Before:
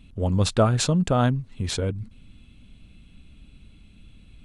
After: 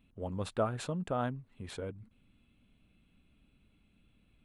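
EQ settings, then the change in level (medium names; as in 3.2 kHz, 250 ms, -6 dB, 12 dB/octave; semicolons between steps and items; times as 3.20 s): bass shelf 100 Hz -6.5 dB; bass shelf 300 Hz -7 dB; peaking EQ 5.7 kHz -14.5 dB 1.6 oct; -8.5 dB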